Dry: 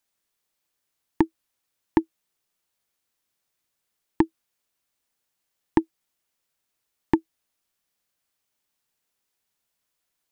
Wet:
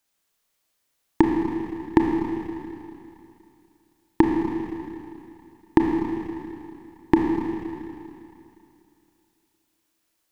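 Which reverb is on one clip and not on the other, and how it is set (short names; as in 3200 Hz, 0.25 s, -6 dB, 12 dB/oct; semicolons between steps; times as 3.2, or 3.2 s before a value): Schroeder reverb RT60 2.7 s, combs from 27 ms, DRR 0.5 dB; gain +3 dB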